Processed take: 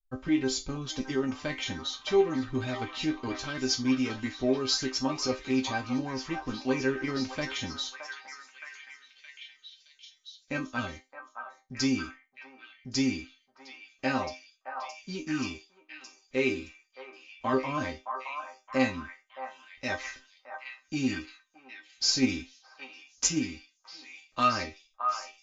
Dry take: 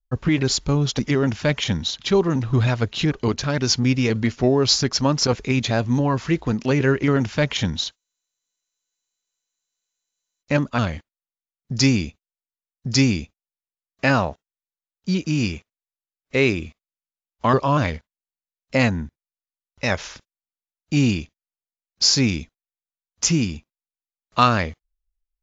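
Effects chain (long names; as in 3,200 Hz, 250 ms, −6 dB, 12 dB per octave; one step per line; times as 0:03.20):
resonators tuned to a chord C4 minor, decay 0.21 s
echo through a band-pass that steps 619 ms, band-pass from 1,000 Hz, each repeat 0.7 octaves, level −3 dB
0:22.06–0:23.41: transient designer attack +7 dB, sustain +3 dB
level +6.5 dB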